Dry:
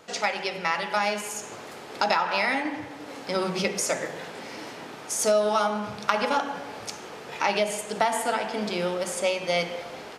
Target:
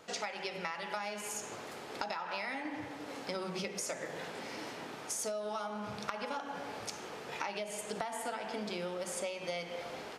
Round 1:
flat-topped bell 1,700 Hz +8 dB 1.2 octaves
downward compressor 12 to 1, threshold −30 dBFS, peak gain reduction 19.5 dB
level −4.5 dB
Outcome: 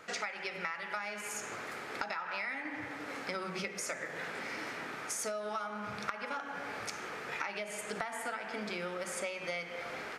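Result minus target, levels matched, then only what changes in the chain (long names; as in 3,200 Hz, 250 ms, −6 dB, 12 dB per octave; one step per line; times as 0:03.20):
2,000 Hz band +4.0 dB
remove: flat-topped bell 1,700 Hz +8 dB 1.2 octaves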